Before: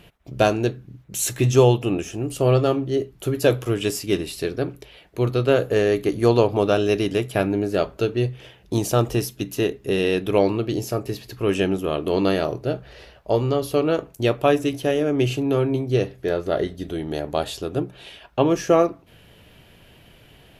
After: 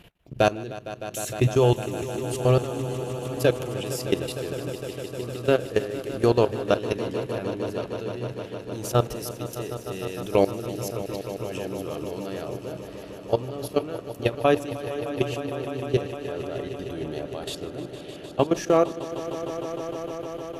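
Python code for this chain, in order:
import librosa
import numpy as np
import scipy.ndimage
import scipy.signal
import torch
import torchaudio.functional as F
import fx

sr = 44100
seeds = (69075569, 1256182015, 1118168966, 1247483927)

p1 = fx.level_steps(x, sr, step_db=17)
y = p1 + fx.echo_swell(p1, sr, ms=153, loudest=5, wet_db=-15, dry=0)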